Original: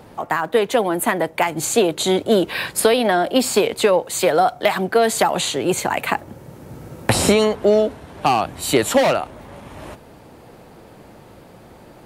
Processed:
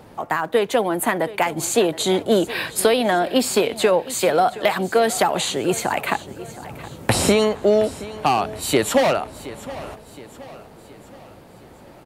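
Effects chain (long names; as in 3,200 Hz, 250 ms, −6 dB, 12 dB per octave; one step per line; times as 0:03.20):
repeating echo 720 ms, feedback 48%, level −17 dB
level −1.5 dB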